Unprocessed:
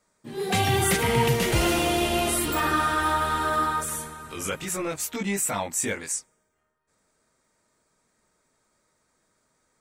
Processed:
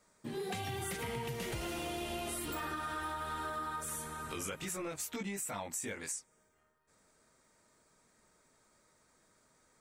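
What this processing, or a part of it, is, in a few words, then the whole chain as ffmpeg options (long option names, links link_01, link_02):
serial compression, leveller first: -af "acompressor=threshold=-26dB:ratio=2.5,acompressor=threshold=-40dB:ratio=4,volume=1dB"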